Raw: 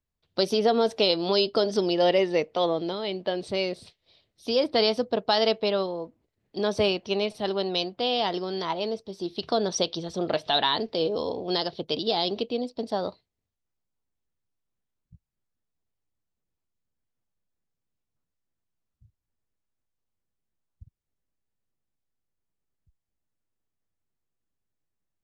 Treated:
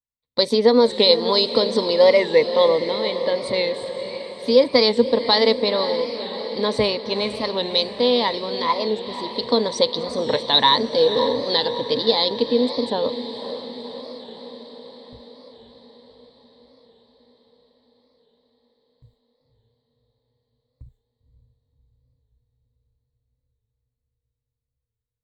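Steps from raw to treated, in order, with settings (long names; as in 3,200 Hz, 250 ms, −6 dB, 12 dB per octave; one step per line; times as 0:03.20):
noise gate with hold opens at −52 dBFS
EQ curve with evenly spaced ripples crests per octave 1, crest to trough 14 dB
on a send: feedback delay with all-pass diffusion 530 ms, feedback 63%, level −11 dB
on the sum: wow of a warped record 45 rpm, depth 100 cents
level +4 dB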